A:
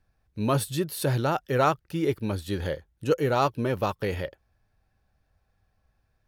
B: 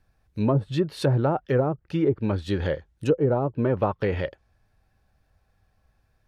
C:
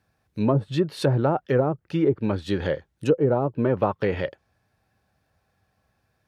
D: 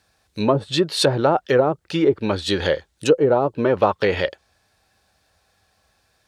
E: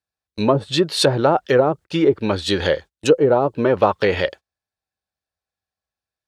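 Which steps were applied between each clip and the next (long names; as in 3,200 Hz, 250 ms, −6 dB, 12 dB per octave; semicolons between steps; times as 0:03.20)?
treble cut that deepens with the level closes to 440 Hz, closed at −19 dBFS; level +4 dB
high-pass filter 110 Hz 12 dB per octave; level +1.5 dB
octave-band graphic EQ 125/250/4,000/8,000 Hz −9/−4/+7/+8 dB; level +6.5 dB
noise gate −34 dBFS, range −28 dB; level +1.5 dB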